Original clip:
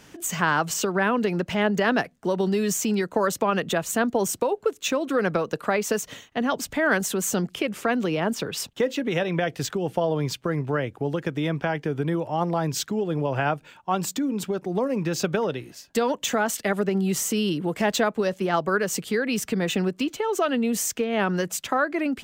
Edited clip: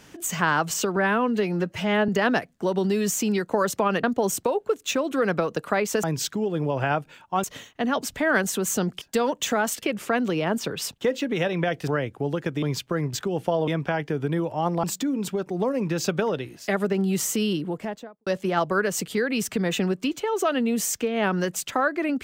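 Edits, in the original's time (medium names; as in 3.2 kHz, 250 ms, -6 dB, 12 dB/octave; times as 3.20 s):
0.96–1.71 s: stretch 1.5×
3.66–4.00 s: delete
9.63–10.17 s: swap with 10.68–11.43 s
12.59–13.99 s: move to 6.00 s
15.83–16.64 s: move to 7.58 s
17.37–18.23 s: studio fade out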